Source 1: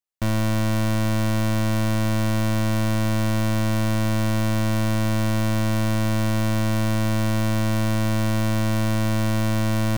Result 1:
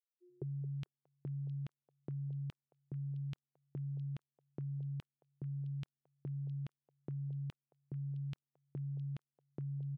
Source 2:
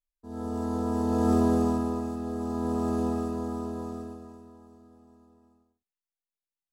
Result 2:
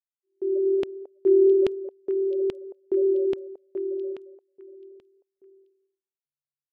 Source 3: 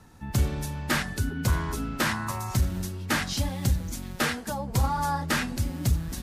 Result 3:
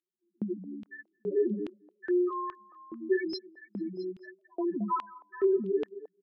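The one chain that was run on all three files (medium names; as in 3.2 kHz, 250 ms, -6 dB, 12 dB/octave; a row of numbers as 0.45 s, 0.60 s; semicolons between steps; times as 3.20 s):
treble shelf 2.9 kHz +5 dB; comb 4.3 ms, depth 71%; in parallel at -3 dB: peak limiter -21.5 dBFS; on the sum: frequency shift +140 Hz; loudest bins only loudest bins 2; LFO high-pass square 1.2 Hz 370–3100 Hz; on a send: repeats whose band climbs or falls 221 ms, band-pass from 570 Hz, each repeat 1.4 oct, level -10.5 dB; on the sum: trim -3.5 dB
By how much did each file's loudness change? -21.5 LU, +4.5 LU, -4.0 LU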